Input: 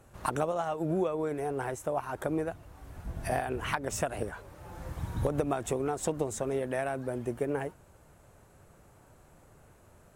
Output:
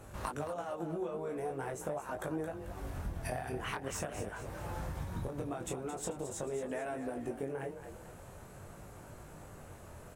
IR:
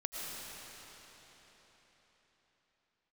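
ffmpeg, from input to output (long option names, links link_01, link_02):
-filter_complex "[0:a]acompressor=threshold=-42dB:ratio=12,flanger=delay=19:depth=5.2:speed=0.44,asplit=6[link_01][link_02][link_03][link_04][link_05][link_06];[link_02]adelay=220,afreqshift=33,volume=-10dB[link_07];[link_03]adelay=440,afreqshift=66,volume=-17.1dB[link_08];[link_04]adelay=660,afreqshift=99,volume=-24.3dB[link_09];[link_05]adelay=880,afreqshift=132,volume=-31.4dB[link_10];[link_06]adelay=1100,afreqshift=165,volume=-38.5dB[link_11];[link_01][link_07][link_08][link_09][link_10][link_11]amix=inputs=6:normalize=0,volume=9.5dB"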